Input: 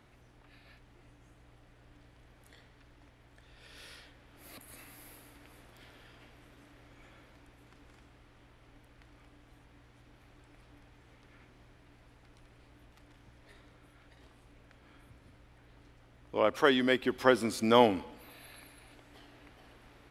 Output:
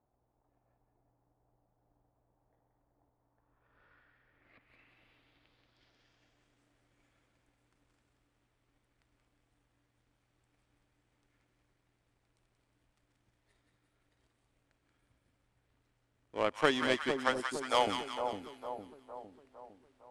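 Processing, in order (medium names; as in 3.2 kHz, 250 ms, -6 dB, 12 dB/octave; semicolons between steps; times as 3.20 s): 17.11–17.87 s: high-pass 580 Hz 24 dB/octave; power-law waveshaper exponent 1.4; two-band feedback delay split 980 Hz, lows 457 ms, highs 180 ms, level -5.5 dB; low-pass sweep 810 Hz -> 8.7 kHz, 3.08–6.70 s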